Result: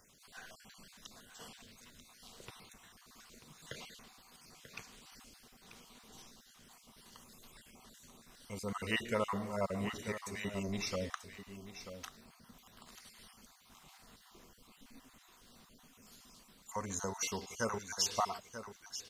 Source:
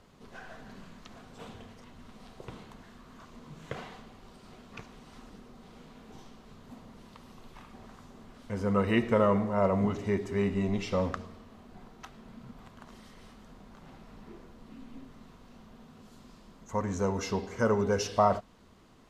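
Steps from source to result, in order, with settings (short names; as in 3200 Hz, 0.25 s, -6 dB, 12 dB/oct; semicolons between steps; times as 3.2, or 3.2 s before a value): random spectral dropouts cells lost 36%; pre-emphasis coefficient 0.9; echo 0.938 s -11 dB; gain +9 dB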